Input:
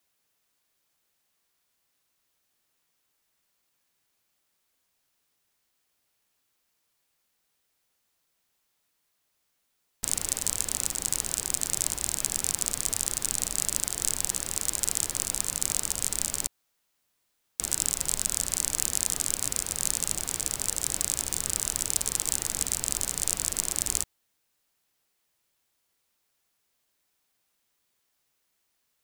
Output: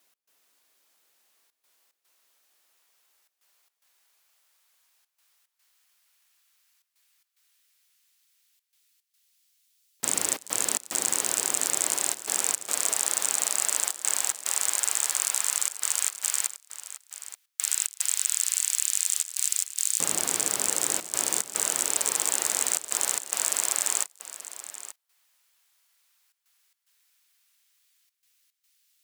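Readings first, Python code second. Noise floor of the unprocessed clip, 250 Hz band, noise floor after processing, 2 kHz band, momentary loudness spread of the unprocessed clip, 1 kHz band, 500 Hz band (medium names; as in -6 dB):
-76 dBFS, -1.5 dB, -82 dBFS, +5.5 dB, 2 LU, +6.0 dB, +4.0 dB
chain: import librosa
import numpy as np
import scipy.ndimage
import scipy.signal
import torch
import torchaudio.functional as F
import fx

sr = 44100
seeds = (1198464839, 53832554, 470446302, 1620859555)

p1 = fx.step_gate(x, sr, bpm=110, pattern='x.xxxxxxxxx.x', floor_db=-24.0, edge_ms=4.5)
p2 = fx.fold_sine(p1, sr, drive_db=10, ceiling_db=-1.5)
p3 = p1 + (p2 * 10.0 ** (-7.0 / 20.0))
p4 = fx.filter_lfo_highpass(p3, sr, shape='saw_up', hz=0.1, low_hz=240.0, high_hz=3500.0, q=0.76)
p5 = p4 + 10.0 ** (-14.0 / 20.0) * np.pad(p4, (int(880 * sr / 1000.0), 0))[:len(p4)]
y = p5 * 10.0 ** (-2.5 / 20.0)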